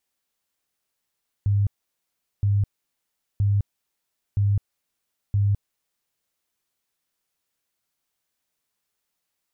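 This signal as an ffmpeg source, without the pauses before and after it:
-f lavfi -i "aevalsrc='0.141*sin(2*PI*101*mod(t,0.97))*lt(mod(t,0.97),21/101)':d=4.85:s=44100"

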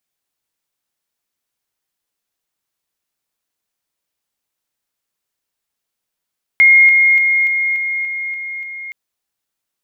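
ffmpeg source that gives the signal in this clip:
-f lavfi -i "aevalsrc='pow(10,(-5-3*floor(t/0.29))/20)*sin(2*PI*2140*t)':d=2.32:s=44100"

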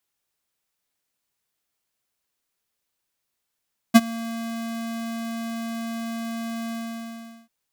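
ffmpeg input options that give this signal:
-f lavfi -i "aevalsrc='0.398*(2*lt(mod(229*t,1),0.5)-1)':d=3.542:s=44100,afade=t=in:d=0.02,afade=t=out:st=0.02:d=0.038:silence=0.075,afade=t=out:st=2.77:d=0.772"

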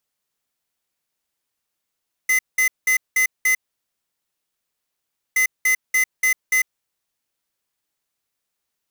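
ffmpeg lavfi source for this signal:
-f lavfi -i "aevalsrc='0.141*(2*lt(mod(2040*t,1),0.5)-1)*clip(min(mod(mod(t,3.07),0.29),0.1-mod(mod(t,3.07),0.29))/0.005,0,1)*lt(mod(t,3.07),1.45)':d=6.14:s=44100"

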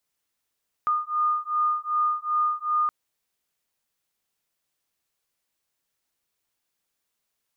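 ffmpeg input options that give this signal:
-f lavfi -i "aevalsrc='0.0562*(sin(2*PI*1220*t)+sin(2*PI*1222.6*t))':d=2.02:s=44100"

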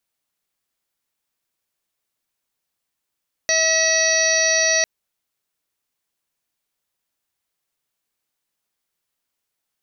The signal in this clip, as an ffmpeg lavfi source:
-f lavfi -i "aevalsrc='0.0794*sin(2*PI*644*t)+0.0112*sin(2*PI*1288*t)+0.0944*sin(2*PI*1932*t)+0.0447*sin(2*PI*2576*t)+0.01*sin(2*PI*3220*t)+0.0316*sin(2*PI*3864*t)+0.0631*sin(2*PI*4508*t)+0.0168*sin(2*PI*5152*t)+0.112*sin(2*PI*5796*t)':d=1.35:s=44100"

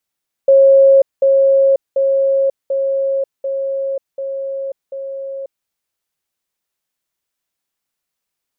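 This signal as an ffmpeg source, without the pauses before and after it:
-f lavfi -i "aevalsrc='pow(10,(-5-3*floor(t/0.74))/20)*sin(2*PI*544*t)*clip(min(mod(t,0.74),0.54-mod(t,0.74))/0.005,0,1)':d=5.18:s=44100"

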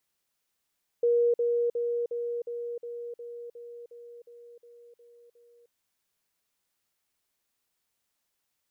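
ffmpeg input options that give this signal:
-f lavfi -i "aevalsrc='pow(10,(-20-3*floor(t/0.36))/20)*sin(2*PI*475*t)*clip(min(mod(t,0.36),0.31-mod(t,0.36))/0.005,0,1)':d=4.68:s=44100"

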